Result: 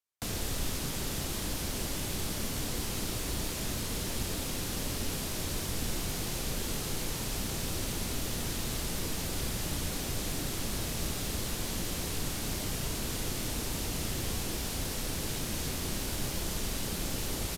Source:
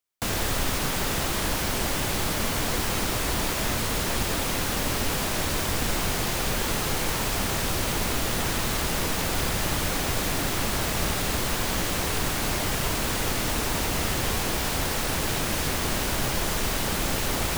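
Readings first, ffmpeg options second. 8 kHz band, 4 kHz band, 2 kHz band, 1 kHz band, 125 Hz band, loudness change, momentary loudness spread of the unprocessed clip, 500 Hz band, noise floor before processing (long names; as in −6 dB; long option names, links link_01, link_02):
−6.5 dB, −8.0 dB, −12.0 dB, −13.5 dB, −6.0 dB, −8.0 dB, 0 LU, −9.5 dB, −28 dBFS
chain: -filter_complex "[0:a]acrossover=split=470|3000[link_01][link_02][link_03];[link_02]acompressor=threshold=-39dB:ratio=6[link_04];[link_01][link_04][link_03]amix=inputs=3:normalize=0,asplit=2[link_05][link_06];[link_06]adelay=34,volume=-11dB[link_07];[link_05][link_07]amix=inputs=2:normalize=0,aresample=32000,aresample=44100,volume=-6.5dB"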